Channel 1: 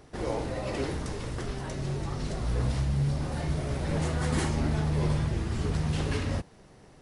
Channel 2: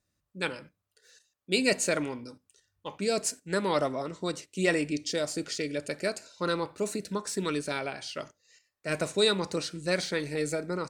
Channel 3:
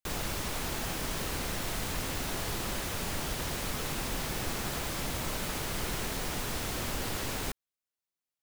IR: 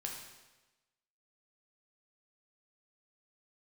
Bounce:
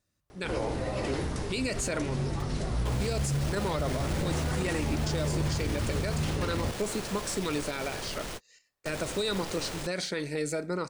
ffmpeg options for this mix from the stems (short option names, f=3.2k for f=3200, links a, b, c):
-filter_complex "[0:a]adelay=300,volume=1dB[a];[1:a]volume=0.5dB,asplit=2[b][c];[2:a]equalizer=f=510:t=o:w=0.77:g=6,acrusher=samples=3:mix=1:aa=0.000001,asoftclip=type=tanh:threshold=-37dB,adelay=2350,volume=2dB[d];[c]apad=whole_len=475174[e];[d][e]sidechaingate=range=-55dB:threshold=-52dB:ratio=16:detection=peak[f];[a][b][f]amix=inputs=3:normalize=0,alimiter=limit=-21dB:level=0:latency=1:release=47"